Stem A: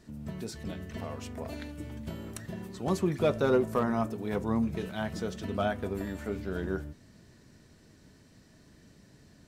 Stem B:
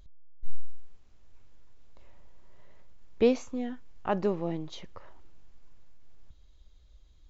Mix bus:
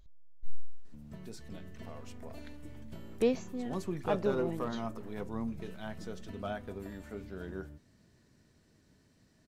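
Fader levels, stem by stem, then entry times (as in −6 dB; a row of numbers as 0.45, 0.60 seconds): −8.5, −5.0 decibels; 0.85, 0.00 seconds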